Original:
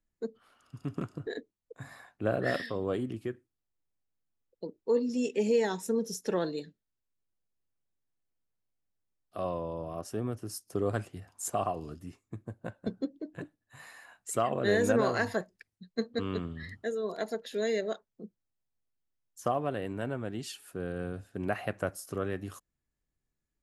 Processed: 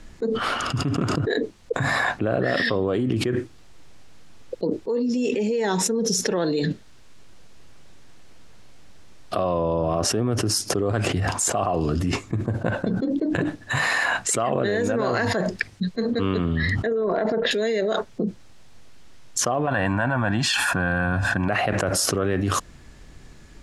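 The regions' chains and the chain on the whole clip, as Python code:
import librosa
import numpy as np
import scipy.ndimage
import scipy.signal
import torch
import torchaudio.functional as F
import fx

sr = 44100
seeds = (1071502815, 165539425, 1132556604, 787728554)

y = fx.chain(x, sr, fx.lowpass(hz=1700.0, slope=12),
    fx.transient(attack_db=4, sustain_db=11), at=(16.86, 17.51))
y = fx.chain(y, sr, fx.peak_eq(hz=1200.0, db=15.0, octaves=1.1),
    fx.comb(ms=1.2, depth=0.83), at=(19.67, 21.49))
y = scipy.signal.sosfilt(scipy.signal.butter(2, 6200.0, 'lowpass', fs=sr, output='sos'), y)
y = fx.env_flatten(y, sr, amount_pct=100)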